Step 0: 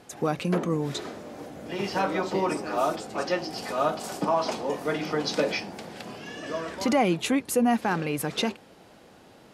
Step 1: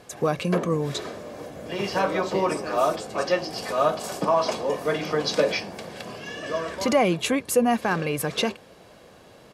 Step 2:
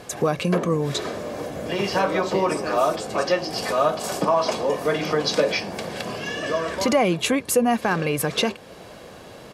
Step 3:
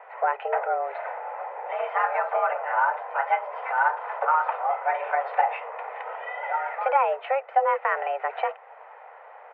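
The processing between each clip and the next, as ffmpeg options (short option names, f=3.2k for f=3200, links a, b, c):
-af "aecho=1:1:1.8:0.34,volume=2.5dB"
-af "acompressor=threshold=-36dB:ratio=1.5,volume=8dB"
-af "aeval=exprs='0.422*(cos(1*acos(clip(val(0)/0.422,-1,1)))-cos(1*PI/2))+0.0422*(cos(3*acos(clip(val(0)/0.422,-1,1)))-cos(3*PI/2))':c=same,highpass=f=220:t=q:w=0.5412,highpass=f=220:t=q:w=1.307,lowpass=f=2k:t=q:w=0.5176,lowpass=f=2k:t=q:w=0.7071,lowpass=f=2k:t=q:w=1.932,afreqshift=270"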